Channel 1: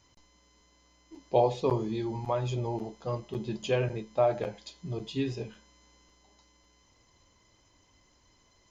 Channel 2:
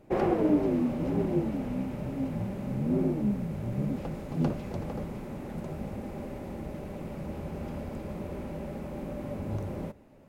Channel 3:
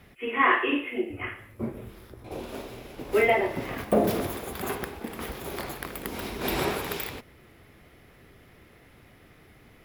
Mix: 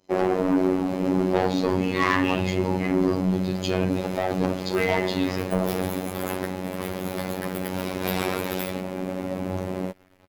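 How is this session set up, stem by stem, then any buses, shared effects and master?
−3.5 dB, 0.00 s, no send, parametric band 4,400 Hz +8.5 dB 0.37 octaves
−3.5 dB, 0.00 s, no send, high-pass filter 170 Hz 12 dB per octave; automatic gain control gain up to 3 dB
−5.0 dB, 1.60 s, no send, string-ensemble chorus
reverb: not used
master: leveller curve on the samples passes 3; phases set to zero 92.9 Hz

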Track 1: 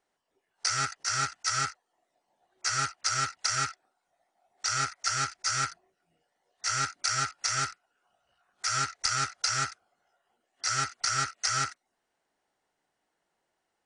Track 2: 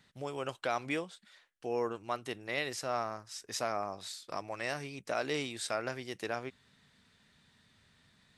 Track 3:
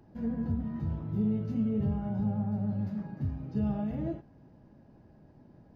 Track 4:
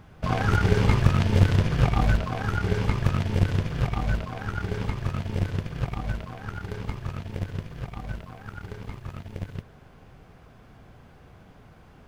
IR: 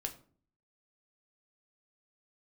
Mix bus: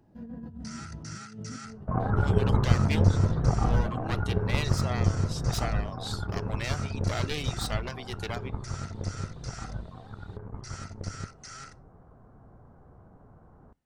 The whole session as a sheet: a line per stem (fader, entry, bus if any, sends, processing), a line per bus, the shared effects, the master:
−11.5 dB, 0.00 s, send −7.5 dB, brickwall limiter −26.5 dBFS, peak gain reduction 12.5 dB
−0.5 dB, 2.00 s, send −12.5 dB, wavefolder on the positive side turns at −35.5 dBFS; reverb reduction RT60 0.75 s; parametric band 3,800 Hz +7 dB 0.91 octaves
−7.0 dB, 0.00 s, no send, notch filter 2,200 Hz; compressor whose output falls as the input rises −33 dBFS, ratio −0.5
−3.5 dB, 1.65 s, send −18 dB, inverse Chebyshev low-pass filter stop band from 4,200 Hz, stop band 60 dB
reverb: on, RT60 0.45 s, pre-delay 3 ms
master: no processing

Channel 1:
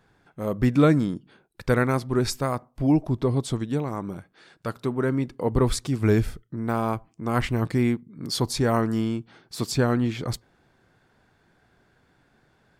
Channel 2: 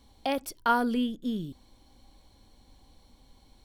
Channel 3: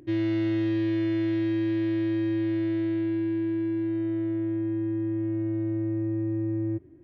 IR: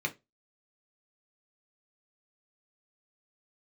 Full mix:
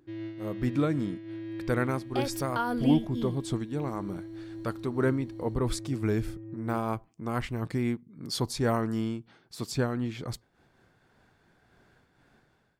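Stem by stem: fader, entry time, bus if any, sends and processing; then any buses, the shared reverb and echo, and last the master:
−11.5 dB, 0.00 s, no send, automatic gain control gain up to 13.5 dB
+0.5 dB, 1.90 s, no send, no processing
−9.5 dB, 0.00 s, no send, no processing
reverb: not used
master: amplitude modulation by smooth noise, depth 65%

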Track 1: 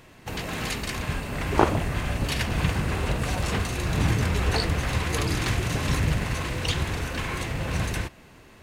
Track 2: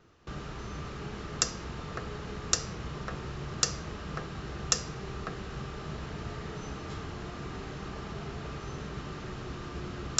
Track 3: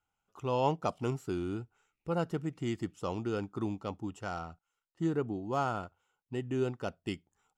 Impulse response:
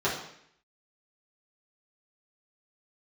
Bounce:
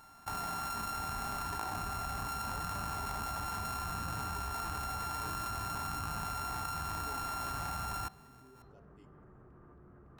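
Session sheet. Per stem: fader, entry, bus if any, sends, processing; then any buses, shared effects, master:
+2.5 dB, 0.00 s, send −18.5 dB, samples sorted by size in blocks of 32 samples; downward compressor, threshold −26 dBFS, peak gain reduction 13 dB; low shelf with overshoot 630 Hz −7 dB, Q 3
−12.5 dB, 0.00 s, no send, low-pass filter 1,600 Hz 24 dB per octave; wave folding −29.5 dBFS
−19.0 dB, 1.90 s, send −22 dB, comb filter 7.1 ms, depth 80%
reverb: on, RT60 0.70 s, pre-delay 3 ms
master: parametric band 3,300 Hz −5.5 dB 1.7 octaves; output level in coarse steps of 19 dB

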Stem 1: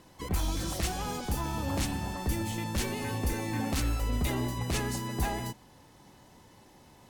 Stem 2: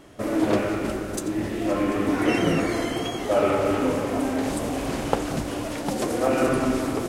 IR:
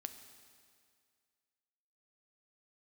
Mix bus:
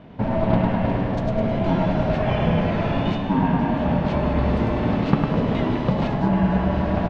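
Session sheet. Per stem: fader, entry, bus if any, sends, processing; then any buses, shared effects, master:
−1.5 dB, 1.30 s, no send, no echo send, Bessel high-pass filter 220 Hz, order 2
−1.5 dB, 0.00 s, no send, echo send −4 dB, ring modulation 330 Hz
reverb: not used
echo: repeating echo 104 ms, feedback 55%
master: low-pass filter 3,700 Hz 24 dB per octave; parametric band 170 Hz +13.5 dB 1.8 octaves; speech leveller within 4 dB 0.5 s

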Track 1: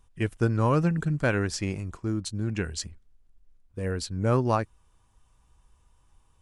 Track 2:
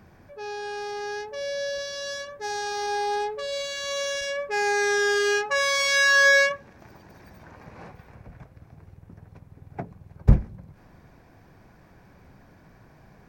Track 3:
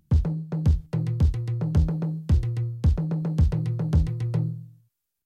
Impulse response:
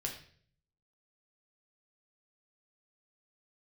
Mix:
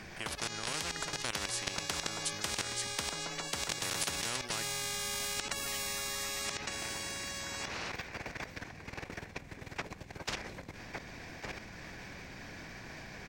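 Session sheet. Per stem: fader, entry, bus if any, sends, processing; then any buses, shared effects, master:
−5.0 dB, 0.00 s, no send, no echo send, no processing
−6.5 dB, 0.00 s, no send, echo send −12 dB, flat-topped bell 3,800 Hz +11.5 dB 2.5 octaves
−4.5 dB, 0.15 s, no send, no echo send, no processing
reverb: not used
echo: single-tap delay 1,160 ms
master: output level in coarse steps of 13 dB; every bin compressed towards the loudest bin 10 to 1

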